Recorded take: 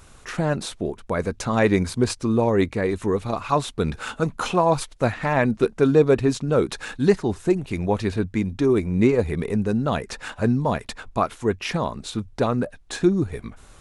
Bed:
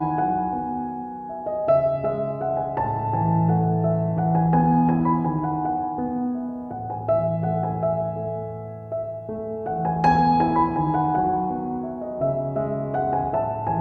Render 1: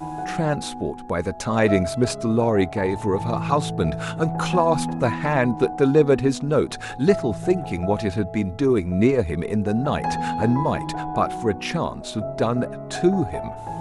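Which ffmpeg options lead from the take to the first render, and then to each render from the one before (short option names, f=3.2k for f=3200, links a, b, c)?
-filter_complex "[1:a]volume=-7.5dB[a];[0:a][a]amix=inputs=2:normalize=0"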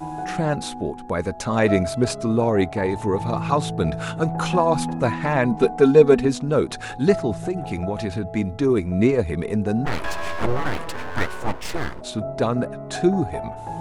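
-filter_complex "[0:a]asettb=1/sr,asplit=3[a][b][c];[a]atrim=end=5.514[d];[b]atrim=start=5.51:end=6.25,asetpts=PTS-STARTPTS,afade=t=in:d=0.004:c=qsin,afade=t=out:st=0.736:d=0.004:c=qsin,aecho=1:1:4.5:0.79,atrim=end_sample=32634[e];[c]atrim=start=6.246[f];[d][e]acrossfade=d=0.004:c1=hsin:c2=qsin[g];[g][f]acrossfade=d=0.004:c1=qsin:c2=hsin,asettb=1/sr,asplit=3[h][i][j];[h]atrim=end=7.384[k];[i]atrim=start=7.38:end=8.36,asetpts=PTS-STARTPTS,afade=t=in:d=0.004:c=qsin,afade=t=out:st=0.976:d=0.004:c=qsin,acompressor=threshold=-20dB:ratio=6:attack=3.2:release=140:knee=1:detection=peak[l];[j]atrim=start=8.356[m];[k][l]acrossfade=d=0.004:c1=hsin:c2=qsin[n];[n][m]acrossfade=d=0.004:c1=qsin:c2=hsin,asplit=3[o][p][q];[o]afade=t=out:st=9.85:d=0.02[r];[p]aeval=exprs='abs(val(0))':c=same,afade=t=in:st=9.85:d=0.02,afade=t=out:st=12:d=0.02[s];[q]afade=t=in:st=12:d=0.02[t];[r][s][t]amix=inputs=3:normalize=0"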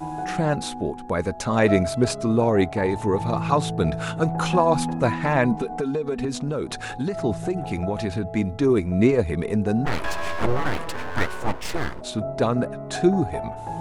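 -filter_complex "[0:a]asettb=1/sr,asplit=3[a][b][c];[a]atrim=end=5.574[d];[b]atrim=start=5.57:end=7.23,asetpts=PTS-STARTPTS,afade=t=in:d=0.004:c=qsin,afade=t=out:st=1.656:d=0.004:c=qsin,acompressor=threshold=-21dB:ratio=20:attack=3.2:release=140:knee=1:detection=peak[e];[c]atrim=start=7.226[f];[d][e]acrossfade=d=0.004:c1=hsin:c2=qsin[g];[g][f]acrossfade=d=0.004:c1=qsin:c2=hsin"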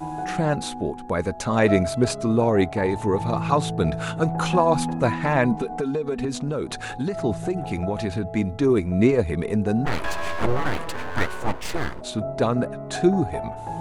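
-af "bandreject=f=5.3k:w=27"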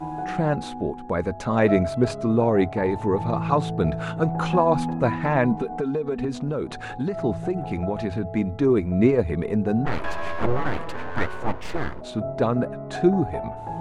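-af "lowpass=f=2.1k:p=1,bandreject=f=50:t=h:w=6,bandreject=f=100:t=h:w=6"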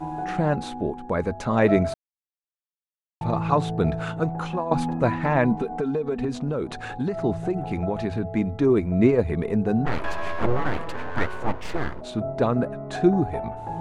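-filter_complex "[0:a]asplit=4[a][b][c][d];[a]atrim=end=1.94,asetpts=PTS-STARTPTS,afade=t=out:st=1.936:d=0.004:c=hsin[e];[b]atrim=start=1.94:end=3.21,asetpts=PTS-STARTPTS,volume=0[f];[c]atrim=start=3.21:end=4.71,asetpts=PTS-STARTPTS,afade=t=in:d=0.004:c=hsin,afade=t=out:st=0.81:d=0.69:silence=0.266073[g];[d]atrim=start=4.71,asetpts=PTS-STARTPTS,afade=t=in:d=0.004:c=hsin:silence=0.266073[h];[e][f][g][h]concat=n=4:v=0:a=1"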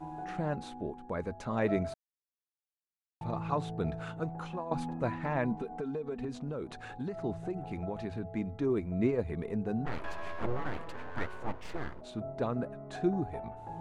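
-af "volume=-11dB"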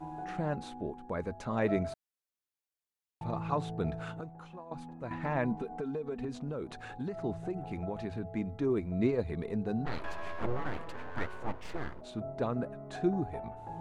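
-filter_complex "[0:a]asettb=1/sr,asplit=3[a][b][c];[a]atrim=end=8.824[d];[b]atrim=start=8.82:end=10.03,asetpts=PTS-STARTPTS,afade=t=in:d=0.004:c=qsin,afade=t=out:st=1.206:d=0.004:c=qsin,equalizer=f=4.1k:w=4.4:g=9[e];[c]atrim=start=10.026[f];[d][e]acrossfade=d=0.004:c1=hsin:c2=qsin[g];[g][f]acrossfade=d=0.004:c1=qsin:c2=hsin,asplit=3[h][i][j];[h]atrim=end=4.212[k];[i]atrim=start=4.208:end=5.112,asetpts=PTS-STARTPTS,volume=-9dB[l];[j]atrim=start=5.108[m];[k][l]acrossfade=d=0.004:c1=hsin:c2=hsin[n];[n][m]acrossfade=d=0.004:c1=hsin:c2=hsin"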